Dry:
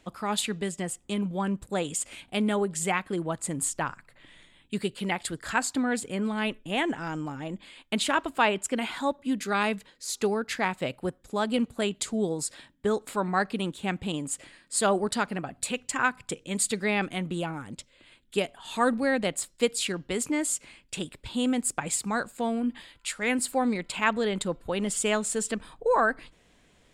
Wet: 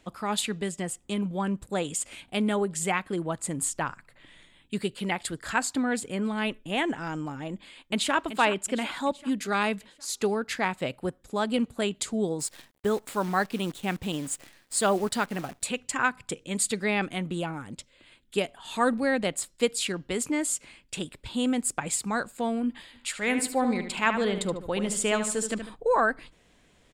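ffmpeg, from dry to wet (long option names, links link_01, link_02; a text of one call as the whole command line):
ffmpeg -i in.wav -filter_complex "[0:a]asplit=2[link_01][link_02];[link_02]afade=type=in:start_time=7.52:duration=0.01,afade=type=out:start_time=8.15:duration=0.01,aecho=0:1:380|760|1140|1520|1900|2280:0.266073|0.14634|0.0804869|0.0442678|0.0243473|0.013391[link_03];[link_01][link_03]amix=inputs=2:normalize=0,asettb=1/sr,asplit=3[link_04][link_05][link_06];[link_04]atrim=end=12.404[link_07];[link_05]atrim=start=12.4:end=15.63,asetpts=PTS-STARTPTS,afade=type=in:duration=0.004:curve=qsin,afade=type=out:start_time=3.226:duration=0.004:curve=qsin,acrusher=bits=8:dc=4:mix=0:aa=0.000001[link_08];[link_06]atrim=start=15.626[link_09];[link_07][link_08]acrossfade=duration=0.004:curve1=hsin:curve2=qsin[link_10];[link_10][link_09]acrossfade=duration=0.004:curve1=qsin:curve2=hsin,asplit=3[link_11][link_12][link_13];[link_11]afade=type=out:start_time=22.92:duration=0.02[link_14];[link_12]asplit=2[link_15][link_16];[link_16]adelay=74,lowpass=frequency=4000:poles=1,volume=-8dB,asplit=2[link_17][link_18];[link_18]adelay=74,lowpass=frequency=4000:poles=1,volume=0.41,asplit=2[link_19][link_20];[link_20]adelay=74,lowpass=frequency=4000:poles=1,volume=0.41,asplit=2[link_21][link_22];[link_22]adelay=74,lowpass=frequency=4000:poles=1,volume=0.41,asplit=2[link_23][link_24];[link_24]adelay=74,lowpass=frequency=4000:poles=1,volume=0.41[link_25];[link_15][link_17][link_19][link_21][link_23][link_25]amix=inputs=6:normalize=0,afade=type=in:start_time=22.92:duration=0.02,afade=type=out:start_time=25.74:duration=0.02[link_26];[link_13]afade=type=in:start_time=25.74:duration=0.02[link_27];[link_14][link_26][link_27]amix=inputs=3:normalize=0" out.wav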